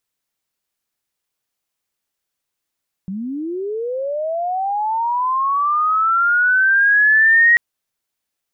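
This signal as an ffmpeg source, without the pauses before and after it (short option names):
-f lavfi -i "aevalsrc='pow(10,(-23+15*t/4.49)/20)*sin(2*PI*(180*t+1720*t*t/(2*4.49)))':d=4.49:s=44100"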